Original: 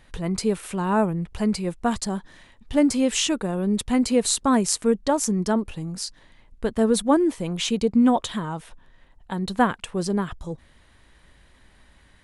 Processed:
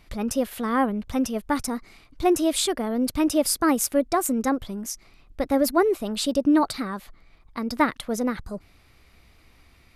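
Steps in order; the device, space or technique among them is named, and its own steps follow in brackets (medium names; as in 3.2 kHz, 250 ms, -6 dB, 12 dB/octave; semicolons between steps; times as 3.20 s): nightcore (tape speed +23%); trim -1 dB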